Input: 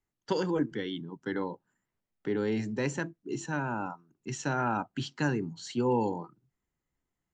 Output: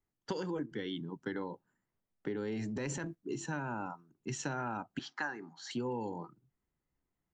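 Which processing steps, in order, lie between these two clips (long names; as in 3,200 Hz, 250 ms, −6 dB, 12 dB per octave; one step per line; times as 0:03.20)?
0:04.99–0:05.71: loudspeaker in its box 460–6,000 Hz, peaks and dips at 460 Hz −9 dB, 790 Hz +9 dB, 1,200 Hz +7 dB, 1,700 Hz +7 dB, 2,800 Hz −8 dB, 4,300 Hz −4 dB
downward compressor, threshold −34 dBFS, peak gain reduction 11 dB
0:02.53–0:03.15: transient designer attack −6 dB, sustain +8 dB
one half of a high-frequency compander decoder only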